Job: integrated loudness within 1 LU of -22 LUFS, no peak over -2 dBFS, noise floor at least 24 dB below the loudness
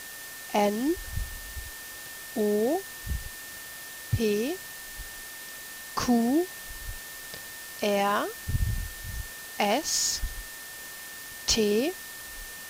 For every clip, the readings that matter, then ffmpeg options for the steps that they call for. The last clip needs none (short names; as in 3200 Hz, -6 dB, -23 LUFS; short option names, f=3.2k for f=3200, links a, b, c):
steady tone 1800 Hz; tone level -44 dBFS; noise floor -42 dBFS; noise floor target -54 dBFS; loudness -30.0 LUFS; peak -10.5 dBFS; loudness target -22.0 LUFS
-> -af "bandreject=f=1.8k:w=30"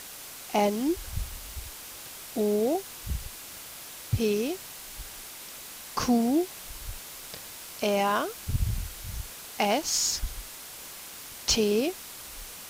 steady tone none; noise floor -43 dBFS; noise floor target -55 dBFS
-> -af "afftdn=nr=12:nf=-43"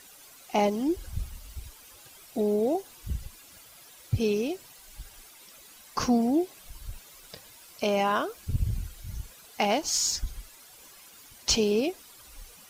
noise floor -52 dBFS; noise floor target -53 dBFS
-> -af "afftdn=nr=6:nf=-52"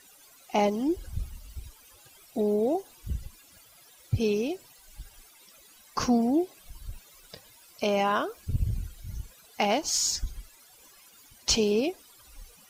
noise floor -56 dBFS; loudness -28.5 LUFS; peak -10.0 dBFS; loudness target -22.0 LUFS
-> -af "volume=6.5dB"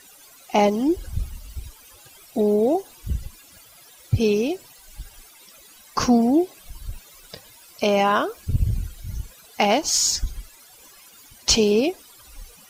loudness -22.0 LUFS; peak -3.5 dBFS; noise floor -50 dBFS